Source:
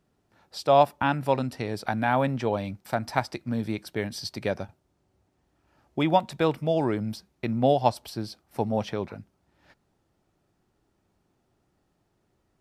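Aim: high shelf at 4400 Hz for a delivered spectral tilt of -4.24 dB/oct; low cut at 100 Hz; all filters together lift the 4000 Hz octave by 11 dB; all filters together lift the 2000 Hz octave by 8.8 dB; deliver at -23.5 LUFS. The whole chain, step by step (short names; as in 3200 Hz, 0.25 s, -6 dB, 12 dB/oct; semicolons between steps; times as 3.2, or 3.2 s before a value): HPF 100 Hz; bell 2000 Hz +8.5 dB; bell 4000 Hz +6.5 dB; high shelf 4400 Hz +8.5 dB; gain +1 dB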